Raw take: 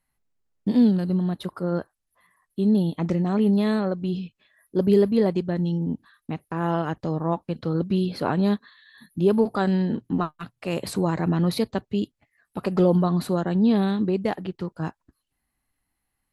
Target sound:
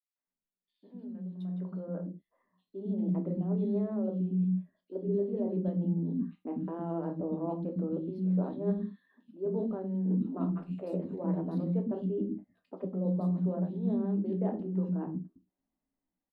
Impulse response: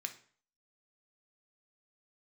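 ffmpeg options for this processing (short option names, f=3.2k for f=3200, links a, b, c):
-filter_complex "[0:a]aemphasis=mode=reproduction:type=50fm[a];[1:a]atrim=start_sample=2205,afade=t=out:st=0.24:d=0.01,atrim=end_sample=11025,asetrate=66150,aresample=44100[b];[a][b]afir=irnorm=-1:irlink=0,areverse,acompressor=threshold=-38dB:ratio=12,areverse,tiltshelf=f=1.2k:g=6.5,acrossover=split=300|2700[c][d][e];[d]adelay=160[f];[c]adelay=270[g];[g][f][e]amix=inputs=3:normalize=0,acrossover=split=820[h][i];[h]dynaudnorm=f=820:g=5:m=15dB[j];[j][i]amix=inputs=2:normalize=0,volume=-8.5dB"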